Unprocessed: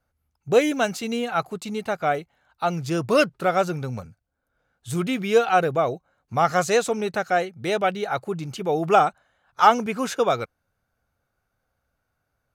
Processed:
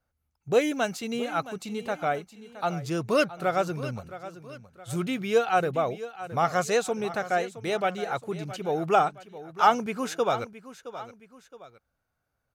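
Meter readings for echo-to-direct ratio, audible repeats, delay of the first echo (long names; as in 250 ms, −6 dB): −14.0 dB, 2, 668 ms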